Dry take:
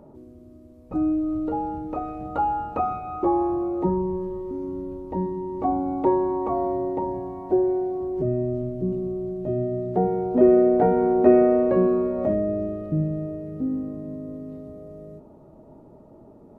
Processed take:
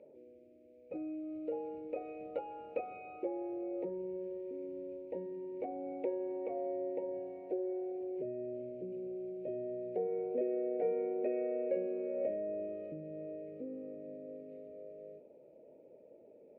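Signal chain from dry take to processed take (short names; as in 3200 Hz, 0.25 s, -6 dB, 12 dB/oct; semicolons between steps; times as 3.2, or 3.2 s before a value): compressor 3:1, threshold -25 dBFS, peak gain reduction 11 dB; double band-pass 1100 Hz, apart 2.2 oct; gain +2.5 dB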